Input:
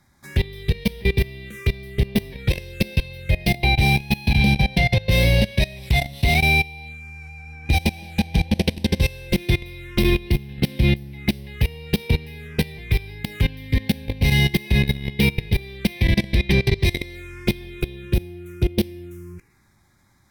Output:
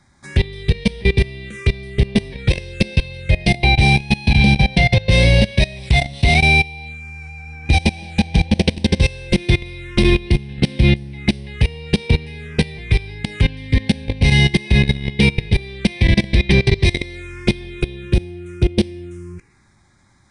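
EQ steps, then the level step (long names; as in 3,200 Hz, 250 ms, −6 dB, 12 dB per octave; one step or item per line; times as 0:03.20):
linear-phase brick-wall low-pass 10,000 Hz
+4.5 dB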